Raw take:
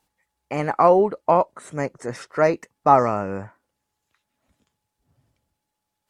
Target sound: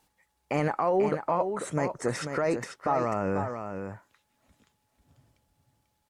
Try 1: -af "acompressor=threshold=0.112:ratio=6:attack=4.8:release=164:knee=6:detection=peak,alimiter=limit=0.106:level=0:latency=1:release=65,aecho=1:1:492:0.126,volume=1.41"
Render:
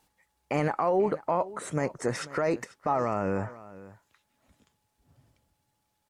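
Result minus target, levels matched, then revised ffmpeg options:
echo-to-direct -10.5 dB
-af "acompressor=threshold=0.112:ratio=6:attack=4.8:release=164:knee=6:detection=peak,alimiter=limit=0.106:level=0:latency=1:release=65,aecho=1:1:492:0.422,volume=1.41"

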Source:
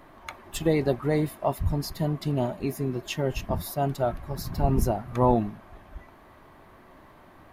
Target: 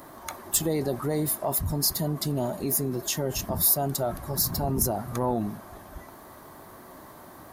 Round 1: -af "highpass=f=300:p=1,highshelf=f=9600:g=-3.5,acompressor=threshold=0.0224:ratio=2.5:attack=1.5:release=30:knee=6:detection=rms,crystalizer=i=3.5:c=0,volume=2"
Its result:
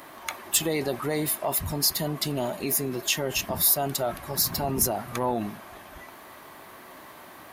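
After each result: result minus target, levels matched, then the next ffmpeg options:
2 kHz band +8.0 dB; 125 Hz band -4.5 dB
-af "highpass=f=300:p=1,highshelf=f=9600:g=-3.5,acompressor=threshold=0.0224:ratio=2.5:attack=1.5:release=30:knee=6:detection=rms,equalizer=f=2600:t=o:w=1.1:g=-11.5,crystalizer=i=3.5:c=0,volume=2"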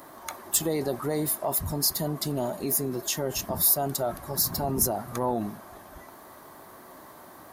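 125 Hz band -4.0 dB
-af "highpass=f=110:p=1,highshelf=f=9600:g=-3.5,acompressor=threshold=0.0224:ratio=2.5:attack=1.5:release=30:knee=6:detection=rms,equalizer=f=2600:t=o:w=1.1:g=-11.5,crystalizer=i=3.5:c=0,volume=2"

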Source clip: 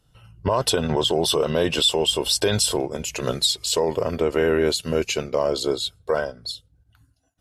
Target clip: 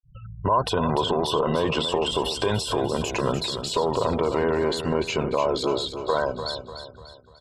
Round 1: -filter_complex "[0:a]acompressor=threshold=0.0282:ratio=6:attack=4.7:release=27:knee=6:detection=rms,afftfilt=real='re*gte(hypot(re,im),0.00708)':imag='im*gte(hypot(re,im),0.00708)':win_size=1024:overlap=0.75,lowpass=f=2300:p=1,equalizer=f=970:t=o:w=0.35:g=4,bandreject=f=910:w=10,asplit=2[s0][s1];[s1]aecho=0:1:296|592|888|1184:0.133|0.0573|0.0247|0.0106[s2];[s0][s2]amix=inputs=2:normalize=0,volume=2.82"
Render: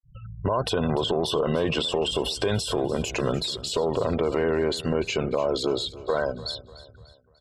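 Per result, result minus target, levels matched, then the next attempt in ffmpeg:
echo-to-direct -8 dB; 1 kHz band -5.0 dB
-filter_complex "[0:a]acompressor=threshold=0.0282:ratio=6:attack=4.7:release=27:knee=6:detection=rms,afftfilt=real='re*gte(hypot(re,im),0.00708)':imag='im*gte(hypot(re,im),0.00708)':win_size=1024:overlap=0.75,lowpass=f=2300:p=1,equalizer=f=970:t=o:w=0.35:g=4,bandreject=f=910:w=10,asplit=2[s0][s1];[s1]aecho=0:1:296|592|888|1184|1480:0.335|0.144|0.0619|0.0266|0.0115[s2];[s0][s2]amix=inputs=2:normalize=0,volume=2.82"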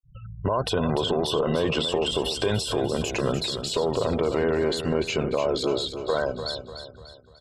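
1 kHz band -5.0 dB
-filter_complex "[0:a]acompressor=threshold=0.0282:ratio=6:attack=4.7:release=27:knee=6:detection=rms,afftfilt=real='re*gte(hypot(re,im),0.00708)':imag='im*gte(hypot(re,im),0.00708)':win_size=1024:overlap=0.75,lowpass=f=2300:p=1,equalizer=f=970:t=o:w=0.35:g=13.5,bandreject=f=910:w=10,asplit=2[s0][s1];[s1]aecho=0:1:296|592|888|1184|1480:0.335|0.144|0.0619|0.0266|0.0115[s2];[s0][s2]amix=inputs=2:normalize=0,volume=2.82"

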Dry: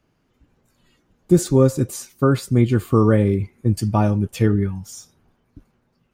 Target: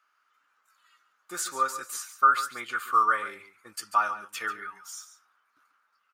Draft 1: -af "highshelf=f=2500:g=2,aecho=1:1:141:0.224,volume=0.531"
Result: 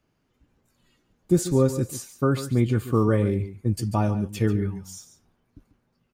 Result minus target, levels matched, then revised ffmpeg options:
1 kHz band -13.0 dB
-af "highpass=f=1300:t=q:w=6.5,highshelf=f=2500:g=2,aecho=1:1:141:0.224,volume=0.531"

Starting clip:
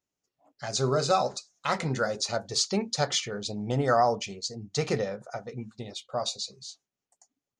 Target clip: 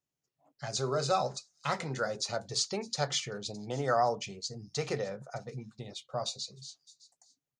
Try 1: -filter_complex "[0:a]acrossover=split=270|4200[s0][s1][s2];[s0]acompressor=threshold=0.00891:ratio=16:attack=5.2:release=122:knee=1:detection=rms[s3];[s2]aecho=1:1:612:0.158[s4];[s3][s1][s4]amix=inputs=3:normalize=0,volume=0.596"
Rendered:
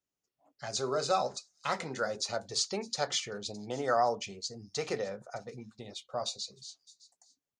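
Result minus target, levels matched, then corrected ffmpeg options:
125 Hz band -7.5 dB
-filter_complex "[0:a]acrossover=split=270|4200[s0][s1][s2];[s0]acompressor=threshold=0.00891:ratio=16:attack=5.2:release=122:knee=1:detection=rms,equalizer=f=140:t=o:w=0.4:g=13[s3];[s2]aecho=1:1:612:0.158[s4];[s3][s1][s4]amix=inputs=3:normalize=0,volume=0.596"

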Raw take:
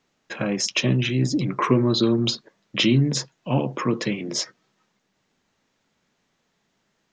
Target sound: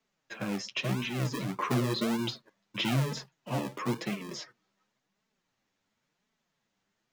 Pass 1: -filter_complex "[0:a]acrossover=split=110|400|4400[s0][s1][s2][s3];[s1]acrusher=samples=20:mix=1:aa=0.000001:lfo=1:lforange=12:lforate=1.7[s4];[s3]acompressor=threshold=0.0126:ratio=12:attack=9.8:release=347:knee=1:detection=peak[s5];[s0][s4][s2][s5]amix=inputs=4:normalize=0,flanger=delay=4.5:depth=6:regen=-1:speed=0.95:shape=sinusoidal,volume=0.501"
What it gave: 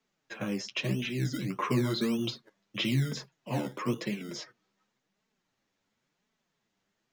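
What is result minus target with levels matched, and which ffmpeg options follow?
decimation with a swept rate: distortion -10 dB
-filter_complex "[0:a]acrossover=split=110|400|4400[s0][s1][s2][s3];[s1]acrusher=samples=48:mix=1:aa=0.000001:lfo=1:lforange=28.8:lforate=1.7[s4];[s3]acompressor=threshold=0.0126:ratio=12:attack=9.8:release=347:knee=1:detection=peak[s5];[s0][s4][s2][s5]amix=inputs=4:normalize=0,flanger=delay=4.5:depth=6:regen=-1:speed=0.95:shape=sinusoidal,volume=0.501"

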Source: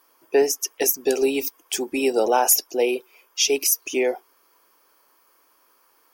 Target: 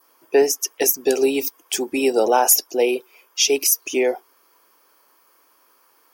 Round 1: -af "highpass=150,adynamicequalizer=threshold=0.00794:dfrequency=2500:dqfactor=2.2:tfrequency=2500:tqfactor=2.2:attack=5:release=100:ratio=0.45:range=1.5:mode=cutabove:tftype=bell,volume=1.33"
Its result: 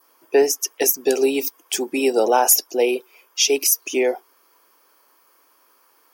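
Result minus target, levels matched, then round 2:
125 Hz band -2.5 dB
-af "highpass=48,adynamicequalizer=threshold=0.00794:dfrequency=2500:dqfactor=2.2:tfrequency=2500:tqfactor=2.2:attack=5:release=100:ratio=0.45:range=1.5:mode=cutabove:tftype=bell,volume=1.33"

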